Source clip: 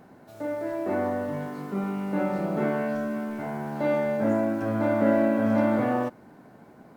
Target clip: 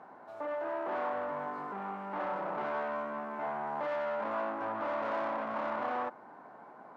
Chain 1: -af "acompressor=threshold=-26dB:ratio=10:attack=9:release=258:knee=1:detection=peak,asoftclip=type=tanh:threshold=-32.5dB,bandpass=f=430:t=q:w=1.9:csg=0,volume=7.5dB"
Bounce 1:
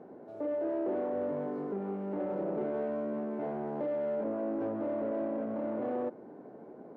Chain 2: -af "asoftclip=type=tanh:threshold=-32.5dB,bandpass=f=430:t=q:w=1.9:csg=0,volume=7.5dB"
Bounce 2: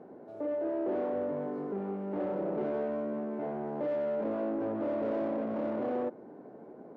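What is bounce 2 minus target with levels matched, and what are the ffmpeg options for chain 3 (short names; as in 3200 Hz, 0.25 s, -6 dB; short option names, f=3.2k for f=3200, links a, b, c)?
1000 Hz band -9.5 dB
-af "asoftclip=type=tanh:threshold=-32.5dB,bandpass=f=1k:t=q:w=1.9:csg=0,volume=7.5dB"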